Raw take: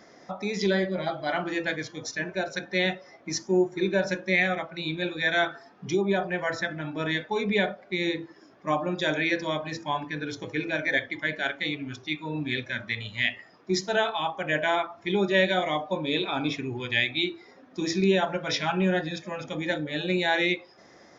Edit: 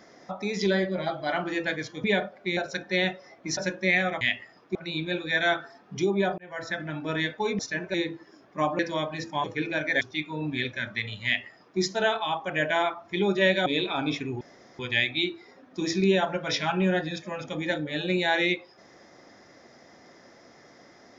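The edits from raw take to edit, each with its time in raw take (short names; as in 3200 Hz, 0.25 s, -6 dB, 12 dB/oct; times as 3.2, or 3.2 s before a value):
2.04–2.39 swap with 7.5–8.03
3.39–4.02 cut
6.29–6.73 fade in
8.88–9.32 cut
9.97–10.42 cut
10.99–11.94 cut
13.18–13.72 copy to 4.66
15.59–16.04 cut
16.79 insert room tone 0.38 s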